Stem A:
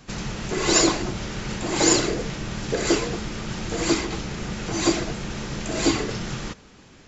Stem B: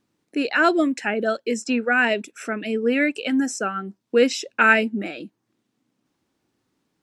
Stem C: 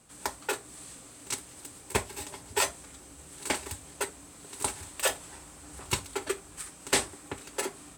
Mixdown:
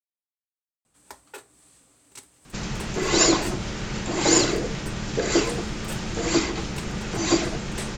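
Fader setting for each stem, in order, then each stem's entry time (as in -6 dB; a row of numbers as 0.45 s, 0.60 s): 0.0 dB, mute, -10.5 dB; 2.45 s, mute, 0.85 s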